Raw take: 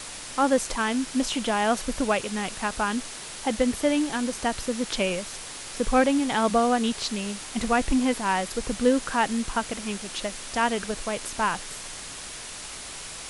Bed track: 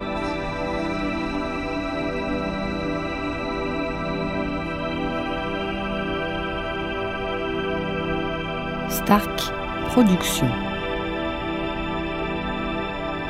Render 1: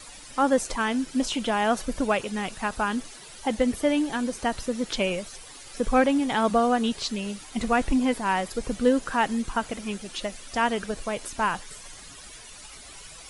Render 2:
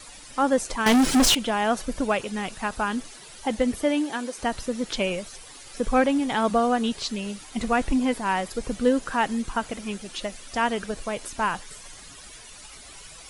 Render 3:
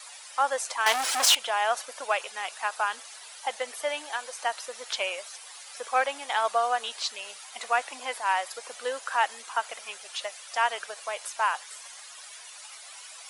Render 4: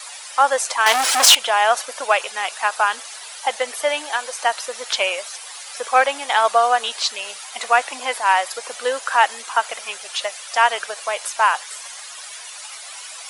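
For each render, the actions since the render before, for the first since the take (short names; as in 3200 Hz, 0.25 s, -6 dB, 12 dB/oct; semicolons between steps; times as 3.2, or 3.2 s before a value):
denoiser 12 dB, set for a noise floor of -39 dBFS
0.86–1.35 sample leveller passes 5; 3.84–4.37 HPF 110 Hz -> 440 Hz
HPF 650 Hz 24 dB/oct
gain +9.5 dB; limiter -2 dBFS, peak gain reduction 2.5 dB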